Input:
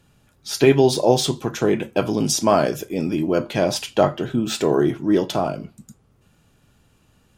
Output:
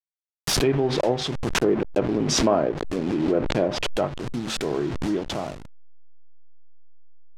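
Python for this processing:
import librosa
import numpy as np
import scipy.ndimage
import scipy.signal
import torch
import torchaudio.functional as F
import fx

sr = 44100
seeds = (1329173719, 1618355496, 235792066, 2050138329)

y = fx.delta_hold(x, sr, step_db=-24.0)
y = fx.dynamic_eq(y, sr, hz=390.0, q=0.78, threshold_db=-31.0, ratio=4.0, max_db=7, at=(1.54, 3.89))
y = fx.env_lowpass_down(y, sr, base_hz=2000.0, full_db=-10.0)
y = fx.pre_swell(y, sr, db_per_s=29.0)
y = y * 10.0 ** (-8.0 / 20.0)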